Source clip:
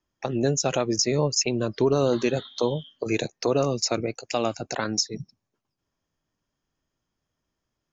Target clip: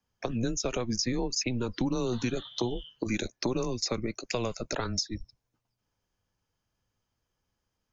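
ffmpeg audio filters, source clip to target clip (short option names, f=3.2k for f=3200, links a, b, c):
-filter_complex "[0:a]acrossover=split=280|5300[a][b][c];[a]acompressor=threshold=-36dB:ratio=4[d];[b]acompressor=threshold=-29dB:ratio=4[e];[c]acompressor=threshold=-39dB:ratio=4[f];[d][e][f]amix=inputs=3:normalize=0,afreqshift=-120"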